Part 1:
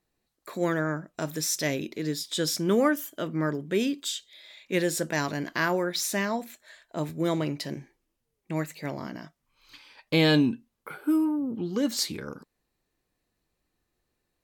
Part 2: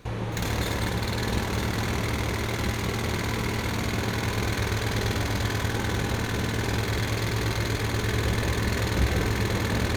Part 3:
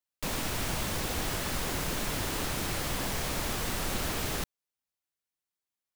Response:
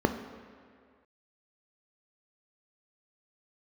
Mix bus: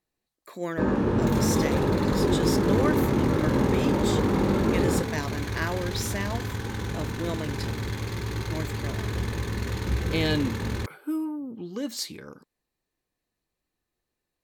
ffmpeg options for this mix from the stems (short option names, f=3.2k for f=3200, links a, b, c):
-filter_complex "[0:a]bandreject=f=1.4k:w=17,volume=-4dB[a];[1:a]asubboost=boost=3:cutoff=140,adelay=900,volume=-7.5dB,asplit=2[b][c];[c]volume=-20.5dB[d];[2:a]highpass=51,flanger=delay=19.5:depth=3.9:speed=0.54,adynamicsmooth=sensitivity=2:basefreq=1.4k,adelay=550,volume=1.5dB,asplit=2[e][f];[f]volume=-4.5dB[g];[3:a]atrim=start_sample=2205[h];[d][g]amix=inputs=2:normalize=0[i];[i][h]afir=irnorm=-1:irlink=0[j];[a][b][e][j]amix=inputs=4:normalize=0,lowshelf=f=330:g=-2.5"